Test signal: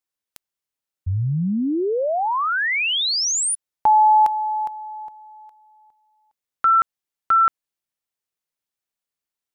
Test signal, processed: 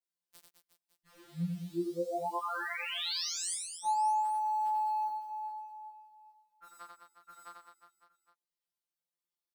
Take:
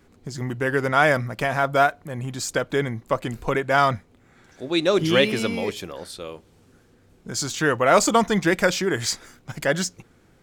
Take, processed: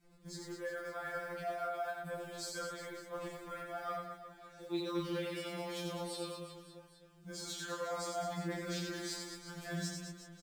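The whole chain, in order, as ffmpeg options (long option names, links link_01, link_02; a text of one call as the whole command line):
ffmpeg -i in.wav -filter_complex "[0:a]adynamicequalizer=threshold=0.0355:dfrequency=1200:dqfactor=1:tfrequency=1200:tqfactor=1:attack=5:release=100:ratio=0.438:range=2.5:mode=boostabove:tftype=bell,areverse,acompressor=threshold=-27dB:ratio=16:attack=1.4:release=235:knee=1:detection=peak,areverse,acrusher=bits=6:mode=log:mix=0:aa=0.000001,acrossover=split=170[link_01][link_02];[link_01]asoftclip=type=tanh:threshold=-37.5dB[link_03];[link_02]asplit=2[link_04][link_05];[link_05]adelay=23,volume=-3dB[link_06];[link_04][link_06]amix=inputs=2:normalize=0[link_07];[link_03][link_07]amix=inputs=2:normalize=0,aecho=1:1:90|207|359.1|556.8|813.9:0.631|0.398|0.251|0.158|0.1,afftfilt=real='re*2.83*eq(mod(b,8),0)':imag='im*2.83*eq(mod(b,8),0)':win_size=2048:overlap=0.75,volume=-8.5dB" out.wav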